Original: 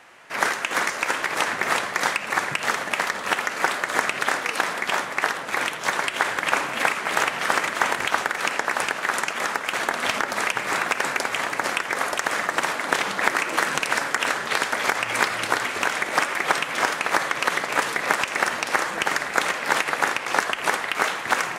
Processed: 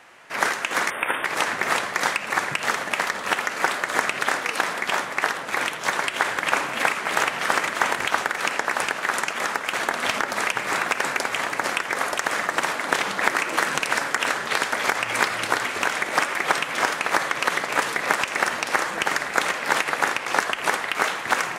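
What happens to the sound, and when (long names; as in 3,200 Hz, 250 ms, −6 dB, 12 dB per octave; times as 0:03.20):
0:00.90–0:01.25: time-frequency box erased 3,700–8,400 Hz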